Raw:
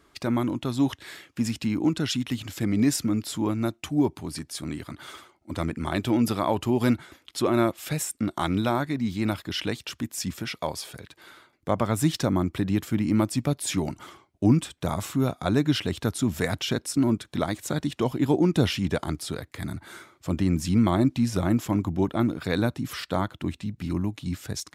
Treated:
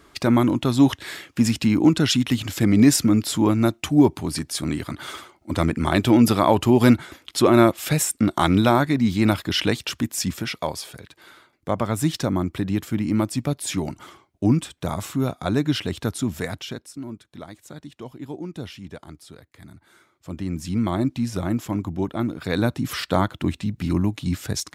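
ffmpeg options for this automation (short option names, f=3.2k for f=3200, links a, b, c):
-af "volume=25.5dB,afade=t=out:st=9.84:d=1.1:silence=0.473151,afade=t=out:st=16.15:d=0.78:silence=0.223872,afade=t=in:st=19.94:d=1.04:silence=0.281838,afade=t=in:st=22.34:d=0.59:silence=0.446684"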